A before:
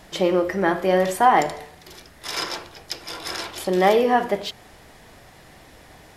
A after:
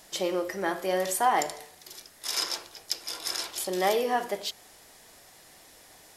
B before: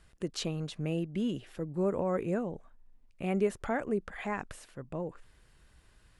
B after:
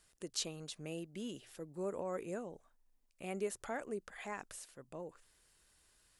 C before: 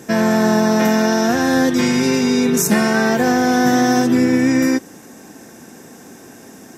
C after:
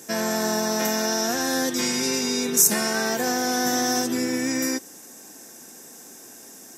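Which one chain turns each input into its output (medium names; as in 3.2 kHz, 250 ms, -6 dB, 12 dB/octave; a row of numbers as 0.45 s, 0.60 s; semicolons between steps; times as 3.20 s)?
tone controls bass -8 dB, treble +12 dB; hum notches 60/120 Hz; trim -8 dB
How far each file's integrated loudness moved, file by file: -7.5 LU, -9.0 LU, -7.0 LU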